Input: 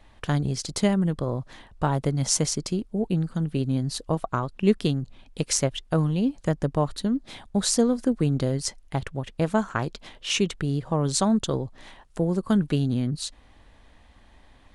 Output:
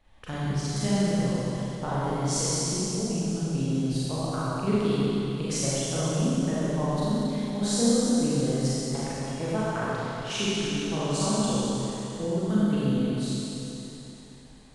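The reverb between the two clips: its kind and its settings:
four-comb reverb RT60 3.4 s, combs from 30 ms, DRR −10 dB
level −11.5 dB

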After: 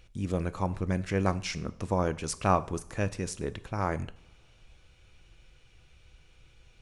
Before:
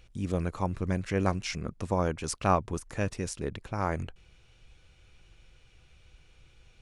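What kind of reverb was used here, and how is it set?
coupled-rooms reverb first 0.54 s, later 4 s, from −27 dB, DRR 13.5 dB

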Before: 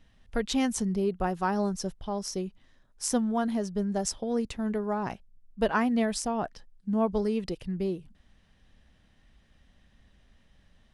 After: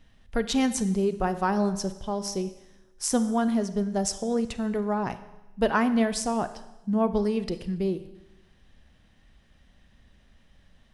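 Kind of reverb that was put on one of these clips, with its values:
four-comb reverb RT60 1 s, combs from 31 ms, DRR 12 dB
level +2.5 dB

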